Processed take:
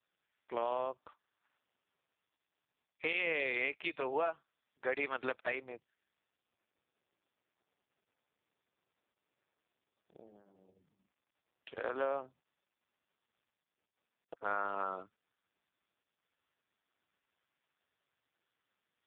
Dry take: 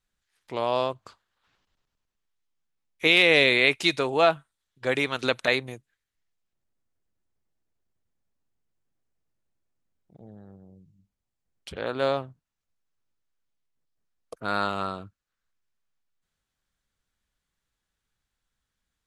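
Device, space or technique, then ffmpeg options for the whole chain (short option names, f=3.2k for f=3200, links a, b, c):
voicemail: -filter_complex "[0:a]asplit=3[a][b][c];[a]afade=t=out:st=10.41:d=0.02[d];[b]highpass=87,afade=t=in:st=10.41:d=0.02,afade=t=out:st=12.2:d=0.02[e];[c]afade=t=in:st=12.2:d=0.02[f];[d][e][f]amix=inputs=3:normalize=0,highpass=370,lowpass=2.7k,acompressor=threshold=-27dB:ratio=10,volume=-2.5dB" -ar 8000 -c:a libopencore_amrnb -b:a 4750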